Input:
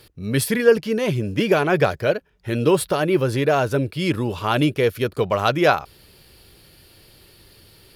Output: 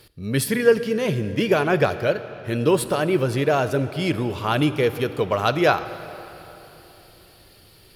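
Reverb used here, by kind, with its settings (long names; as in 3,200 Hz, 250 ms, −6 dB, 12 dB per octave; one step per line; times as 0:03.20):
comb and all-pass reverb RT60 3.5 s, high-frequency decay 0.8×, pre-delay 0 ms, DRR 12 dB
level −1.5 dB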